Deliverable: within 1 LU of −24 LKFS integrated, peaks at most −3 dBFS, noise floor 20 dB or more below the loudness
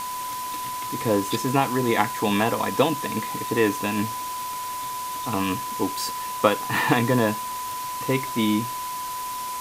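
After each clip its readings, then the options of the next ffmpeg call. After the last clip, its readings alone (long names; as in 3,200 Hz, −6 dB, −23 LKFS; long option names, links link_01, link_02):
interfering tone 1,000 Hz; level of the tone −29 dBFS; background noise floor −31 dBFS; target noise floor −45 dBFS; integrated loudness −25.0 LKFS; sample peak −2.5 dBFS; target loudness −24.0 LKFS
→ -af "bandreject=frequency=1000:width=30"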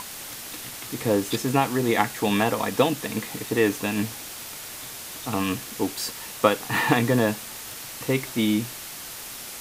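interfering tone none found; background noise floor −38 dBFS; target noise floor −46 dBFS
→ -af "afftdn=noise_reduction=8:noise_floor=-38"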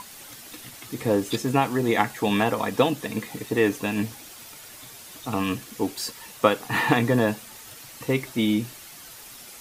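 background noise floor −44 dBFS; target noise floor −45 dBFS
→ -af "afftdn=noise_reduction=6:noise_floor=-44"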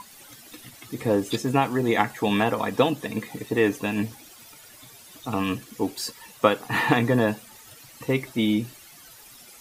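background noise floor −49 dBFS; integrated loudness −25.0 LKFS; sample peak −2.5 dBFS; target loudness −24.0 LKFS
→ -af "volume=1dB,alimiter=limit=-3dB:level=0:latency=1"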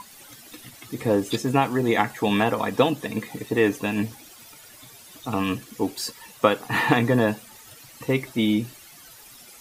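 integrated loudness −24.0 LKFS; sample peak −3.0 dBFS; background noise floor −48 dBFS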